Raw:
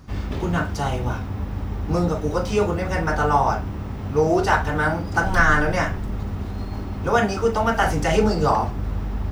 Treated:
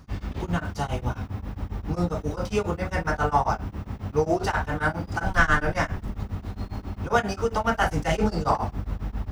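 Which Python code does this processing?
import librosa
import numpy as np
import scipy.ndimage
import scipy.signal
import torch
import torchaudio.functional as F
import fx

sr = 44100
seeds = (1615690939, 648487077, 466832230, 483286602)

y = fx.tracing_dist(x, sr, depth_ms=0.024)
y = fx.peak_eq(y, sr, hz=390.0, db=-2.5, octaves=0.66)
y = y * np.abs(np.cos(np.pi * 7.4 * np.arange(len(y)) / sr))
y = y * librosa.db_to_amplitude(-1.5)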